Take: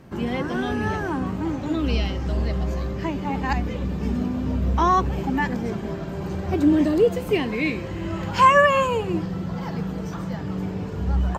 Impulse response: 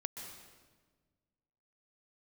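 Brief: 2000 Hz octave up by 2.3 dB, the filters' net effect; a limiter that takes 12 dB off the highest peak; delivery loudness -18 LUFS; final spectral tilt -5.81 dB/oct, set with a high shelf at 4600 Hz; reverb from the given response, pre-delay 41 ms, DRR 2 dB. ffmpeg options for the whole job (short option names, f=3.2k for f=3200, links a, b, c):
-filter_complex "[0:a]equalizer=f=2k:t=o:g=4,highshelf=f=4.6k:g=-7.5,alimiter=limit=-15.5dB:level=0:latency=1,asplit=2[a][b];[1:a]atrim=start_sample=2205,adelay=41[c];[b][c]afir=irnorm=-1:irlink=0,volume=-1dB[d];[a][d]amix=inputs=2:normalize=0,volume=6dB"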